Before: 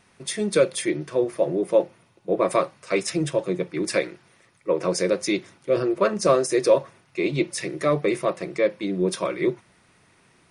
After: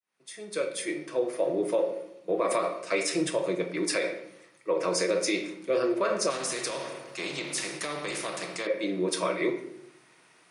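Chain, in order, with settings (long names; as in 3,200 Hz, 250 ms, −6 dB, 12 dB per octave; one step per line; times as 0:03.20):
fade in at the beginning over 1.65 s
high-pass filter 220 Hz 12 dB per octave
low-shelf EQ 470 Hz −6.5 dB
rectangular room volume 160 cubic metres, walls mixed, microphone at 0.54 metres
brickwall limiter −17 dBFS, peak gain reduction 8.5 dB
0:06.30–0:08.67: every bin compressed towards the loudest bin 2 to 1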